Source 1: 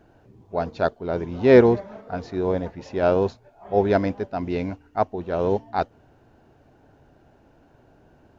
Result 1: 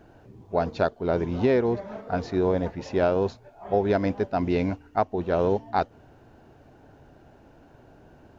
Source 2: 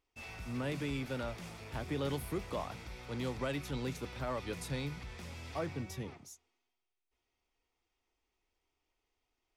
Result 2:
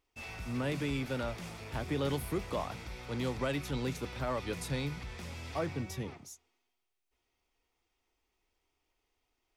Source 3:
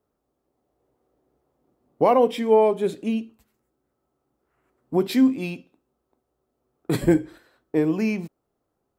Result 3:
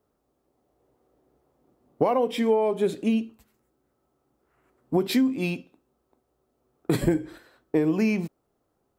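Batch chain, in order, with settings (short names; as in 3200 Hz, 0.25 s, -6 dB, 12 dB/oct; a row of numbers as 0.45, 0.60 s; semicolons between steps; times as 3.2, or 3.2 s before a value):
compressor 16:1, threshold -21 dBFS; gain +3 dB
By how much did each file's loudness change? -3.0, +3.0, -3.0 LU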